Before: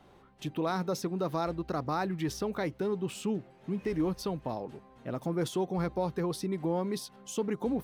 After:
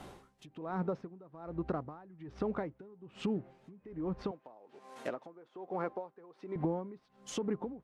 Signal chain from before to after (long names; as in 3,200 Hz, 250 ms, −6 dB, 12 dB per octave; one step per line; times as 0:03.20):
variable-slope delta modulation 64 kbit/s
treble cut that deepens with the level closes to 1,400 Hz, closed at −30.5 dBFS
0:04.31–0:06.56: high-pass filter 420 Hz 12 dB per octave
downward compressor 5 to 1, threshold −41 dBFS, peak gain reduction 13.5 dB
tremolo with a sine in dB 1.2 Hz, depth 22 dB
level +10 dB